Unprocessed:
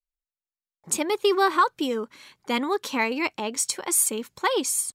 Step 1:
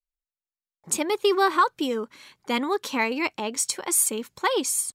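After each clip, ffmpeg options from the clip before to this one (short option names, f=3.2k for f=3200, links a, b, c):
-af anull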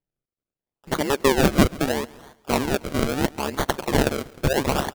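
-af "acrusher=samples=34:mix=1:aa=0.000001:lfo=1:lforange=34:lforate=0.76,tremolo=f=140:d=0.947,aecho=1:1:138|276|414:0.0841|0.0345|0.0141,volume=6.5dB"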